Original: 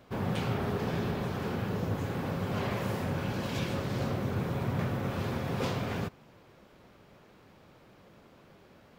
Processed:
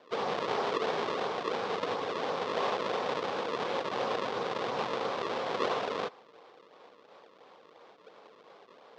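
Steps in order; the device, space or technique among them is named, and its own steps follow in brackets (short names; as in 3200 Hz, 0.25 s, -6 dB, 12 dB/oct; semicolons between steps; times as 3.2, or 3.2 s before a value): circuit-bent sampling toy (decimation with a swept rate 33×, swing 160% 2.9 Hz; speaker cabinet 460–5100 Hz, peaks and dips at 470 Hz +9 dB, 790 Hz +5 dB, 1100 Hz +7 dB, 3500 Hz +4 dB); gain +2 dB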